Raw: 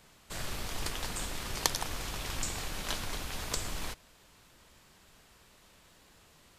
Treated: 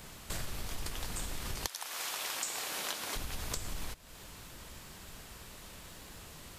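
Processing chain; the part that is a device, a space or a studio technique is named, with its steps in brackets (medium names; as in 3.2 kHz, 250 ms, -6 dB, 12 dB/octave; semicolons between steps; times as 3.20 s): 1.66–3.15 s: high-pass 920 Hz -> 320 Hz 12 dB/octave; ASMR close-microphone chain (bass shelf 190 Hz +5 dB; compression 5:1, threshold -45 dBFS, peak gain reduction 21 dB; treble shelf 9.8 kHz +7 dB); trim +8.5 dB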